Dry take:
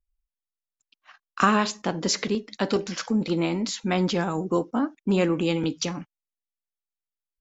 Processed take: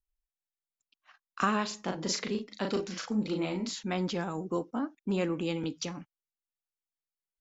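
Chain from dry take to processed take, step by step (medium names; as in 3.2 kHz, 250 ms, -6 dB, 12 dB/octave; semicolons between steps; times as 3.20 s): 1.67–3.83 s: doubling 38 ms -4 dB; trim -8 dB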